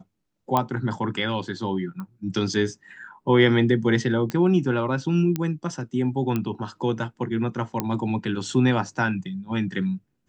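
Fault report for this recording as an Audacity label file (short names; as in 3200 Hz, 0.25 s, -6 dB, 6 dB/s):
0.570000	0.570000	pop -9 dBFS
2.000000	2.000000	pop -24 dBFS
4.300000	4.300000	pop -15 dBFS
5.360000	5.360000	pop -12 dBFS
6.360000	6.360000	pop -13 dBFS
7.800000	7.800000	pop -10 dBFS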